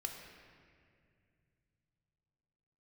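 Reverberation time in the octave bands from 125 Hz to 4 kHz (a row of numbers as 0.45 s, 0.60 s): 4.4 s, 3.4 s, 2.6 s, 2.0 s, 2.3 s, 1.6 s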